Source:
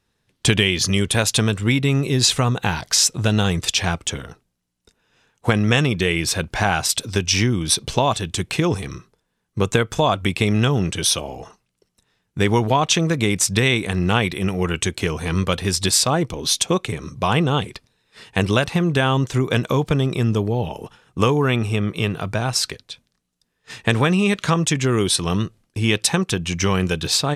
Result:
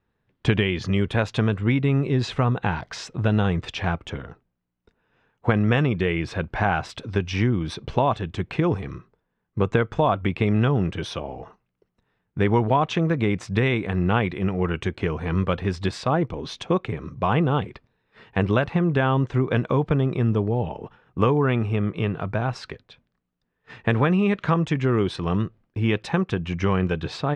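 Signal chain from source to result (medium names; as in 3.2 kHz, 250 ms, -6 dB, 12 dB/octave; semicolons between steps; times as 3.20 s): low-pass 1.9 kHz 12 dB/octave; trim -2 dB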